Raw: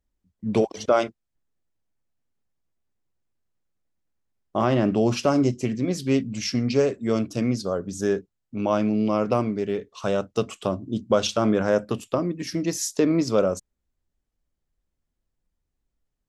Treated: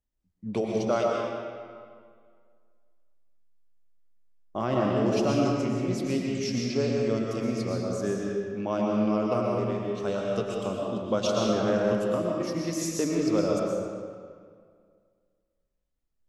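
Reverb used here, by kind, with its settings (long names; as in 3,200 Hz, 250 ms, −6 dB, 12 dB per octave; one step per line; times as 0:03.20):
comb and all-pass reverb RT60 2 s, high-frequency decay 0.75×, pre-delay 80 ms, DRR −2 dB
level −7.5 dB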